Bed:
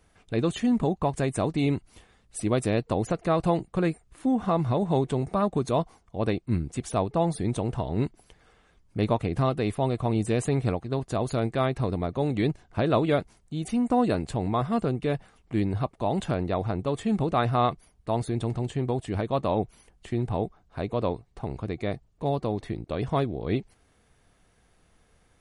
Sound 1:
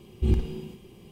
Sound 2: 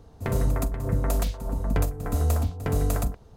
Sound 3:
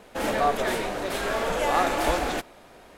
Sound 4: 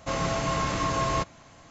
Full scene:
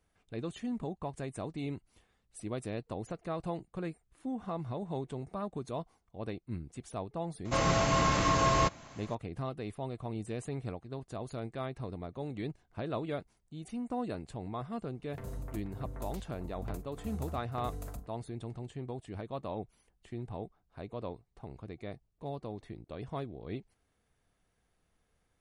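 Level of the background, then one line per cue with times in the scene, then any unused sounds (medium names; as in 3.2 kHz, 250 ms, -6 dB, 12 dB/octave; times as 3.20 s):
bed -13 dB
7.45 s: add 4
14.92 s: add 2 -17.5 dB
not used: 1, 3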